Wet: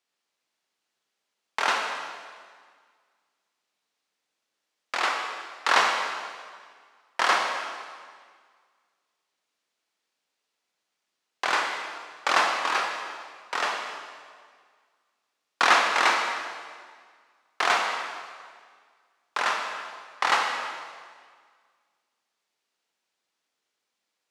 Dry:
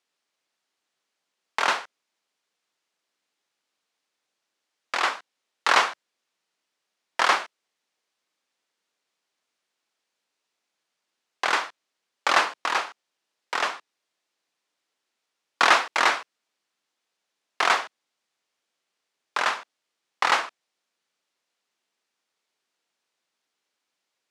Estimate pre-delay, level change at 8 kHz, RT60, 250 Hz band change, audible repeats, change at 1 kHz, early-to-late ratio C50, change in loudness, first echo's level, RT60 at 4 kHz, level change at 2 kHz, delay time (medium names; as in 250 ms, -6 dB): 23 ms, -0.5 dB, 1.8 s, -0.5 dB, no echo, 0.0 dB, 3.0 dB, -2.0 dB, no echo, 1.6 s, -0.5 dB, no echo